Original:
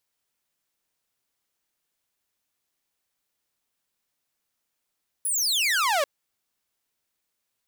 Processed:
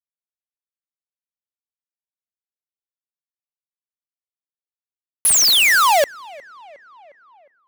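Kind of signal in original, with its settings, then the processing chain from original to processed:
single falling chirp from 11,000 Hz, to 540 Hz, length 0.79 s saw, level −18 dB
log-companded quantiser 2 bits
tape delay 359 ms, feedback 71%, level −19.5 dB, low-pass 2,400 Hz
automatic gain control gain up to 11.5 dB

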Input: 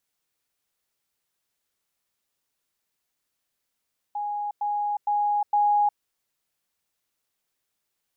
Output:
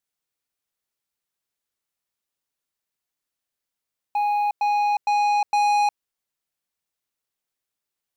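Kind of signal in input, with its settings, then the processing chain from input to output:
level staircase 827 Hz −26.5 dBFS, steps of 3 dB, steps 4, 0.36 s 0.10 s
leveller curve on the samples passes 3

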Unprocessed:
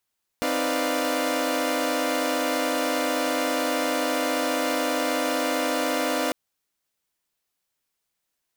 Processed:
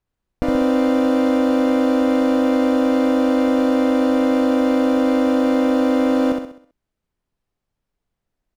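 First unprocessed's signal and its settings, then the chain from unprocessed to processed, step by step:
held notes C4/D#4/B4/D5/F5 saw, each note −27 dBFS 5.90 s
spectral tilt −4.5 dB per octave
on a send: repeating echo 65 ms, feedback 44%, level −4 dB

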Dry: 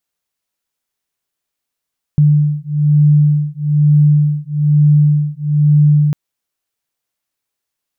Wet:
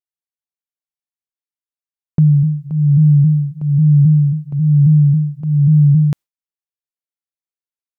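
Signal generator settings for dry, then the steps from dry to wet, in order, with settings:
two tones that beat 148 Hz, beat 1.1 Hz, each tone −11.5 dBFS 3.95 s
noise gate with hold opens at −18 dBFS
pitch modulation by a square or saw wave saw down 3.7 Hz, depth 100 cents

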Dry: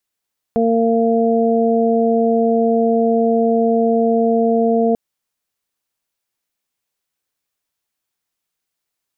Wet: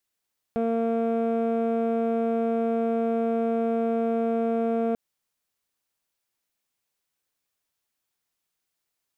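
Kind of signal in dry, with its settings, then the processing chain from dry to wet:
steady harmonic partials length 4.39 s, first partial 229 Hz, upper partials 0.5/−3 dB, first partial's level −16 dB
leveller curve on the samples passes 1
brickwall limiter −19.5 dBFS

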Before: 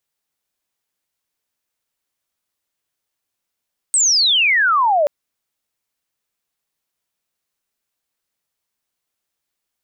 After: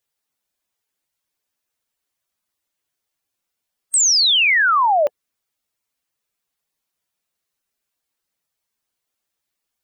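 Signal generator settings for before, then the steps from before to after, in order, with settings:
glide logarithmic 8,500 Hz → 560 Hz −11.5 dBFS → −12 dBFS 1.13 s
spectral magnitudes quantised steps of 15 dB

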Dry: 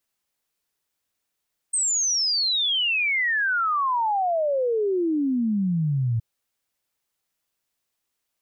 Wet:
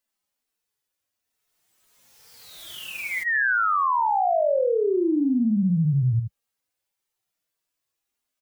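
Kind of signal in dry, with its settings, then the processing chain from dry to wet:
exponential sine sweep 8,500 Hz → 110 Hz 4.47 s −20 dBFS
harmonic-percussive split with one part muted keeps harmonic
on a send: single-tap delay 78 ms −5 dB
on the sum: background raised ahead of every attack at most 29 dB per second

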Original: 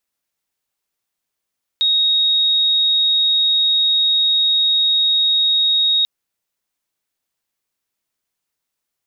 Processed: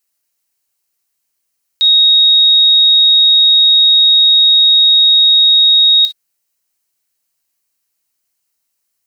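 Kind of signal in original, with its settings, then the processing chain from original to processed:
tone sine 3,760 Hz −12.5 dBFS 4.24 s
high-shelf EQ 3,400 Hz +10.5 dB
notch filter 3,500 Hz, Q 8.6
reverb whose tail is shaped and stops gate 80 ms flat, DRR 8.5 dB

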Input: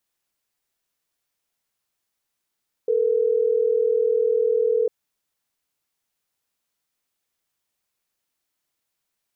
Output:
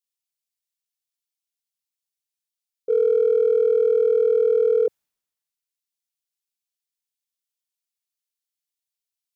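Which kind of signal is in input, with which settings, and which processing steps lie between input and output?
call progress tone ringback tone, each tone −20 dBFS
in parallel at −10 dB: gain into a clipping stage and back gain 17.5 dB
on the sum: multiband upward and downward expander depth 70%

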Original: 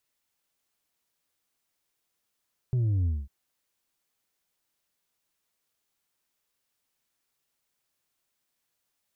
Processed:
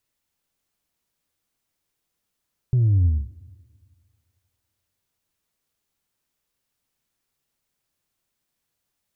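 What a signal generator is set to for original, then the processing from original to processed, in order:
bass drop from 130 Hz, over 0.55 s, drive 3.5 dB, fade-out 0.22 s, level −23 dB
low-shelf EQ 260 Hz +9 dB
four-comb reverb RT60 2 s, combs from 30 ms, DRR 19.5 dB

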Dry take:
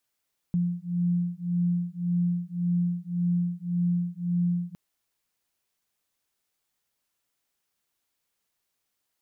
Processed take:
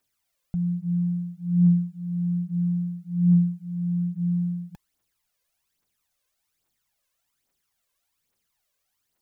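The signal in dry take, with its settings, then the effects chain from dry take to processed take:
two tones that beat 174 Hz, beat 1.8 Hz, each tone −27 dBFS 4.21 s
phase shifter 1.2 Hz, delay 2 ms, feedback 64%

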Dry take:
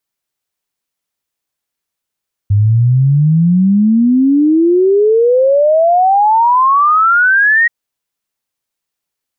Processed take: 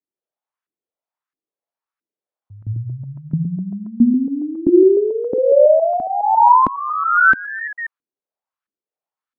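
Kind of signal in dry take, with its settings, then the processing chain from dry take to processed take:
exponential sine sweep 99 Hz → 1,900 Hz 5.18 s −6.5 dBFS
delay that plays each chunk backwards 138 ms, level −4.5 dB
auto-filter band-pass saw up 1.5 Hz 260–1,500 Hz

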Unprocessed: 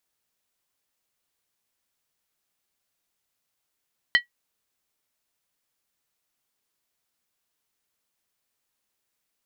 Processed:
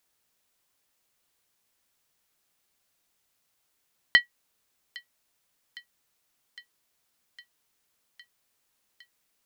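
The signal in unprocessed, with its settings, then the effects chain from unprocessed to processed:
struck skin, lowest mode 1,930 Hz, decay 0.12 s, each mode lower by 6.5 dB, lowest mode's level −10.5 dB
in parallel at −1.5 dB: output level in coarse steps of 9 dB
on the sum: delay with a high-pass on its return 809 ms, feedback 76%, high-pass 2,700 Hz, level −18 dB

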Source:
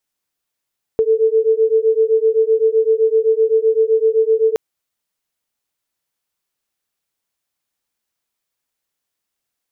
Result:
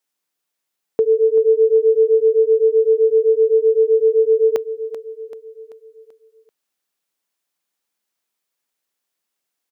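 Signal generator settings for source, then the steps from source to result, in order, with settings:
two tones that beat 440 Hz, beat 7.8 Hz, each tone −14.5 dBFS 3.57 s
high-pass filter 180 Hz 12 dB per octave
on a send: repeating echo 386 ms, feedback 49%, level −13 dB

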